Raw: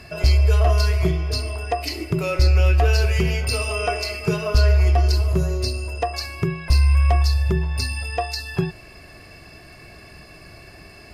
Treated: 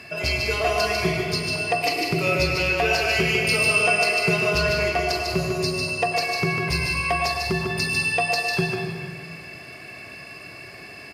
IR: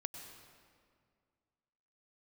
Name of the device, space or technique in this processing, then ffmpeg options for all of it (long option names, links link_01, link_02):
stadium PA: -filter_complex "[0:a]highpass=150,equalizer=frequency=2400:width_type=o:width=0.89:gain=6.5,aecho=1:1:148.7|198.3:0.631|0.282[link_01];[1:a]atrim=start_sample=2205[link_02];[link_01][link_02]afir=irnorm=-1:irlink=0,volume=2.5dB"